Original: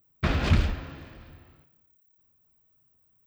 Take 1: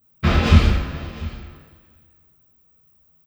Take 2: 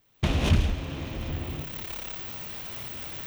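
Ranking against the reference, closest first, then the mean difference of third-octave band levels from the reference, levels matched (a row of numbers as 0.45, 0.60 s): 1, 2; 3.5, 9.0 dB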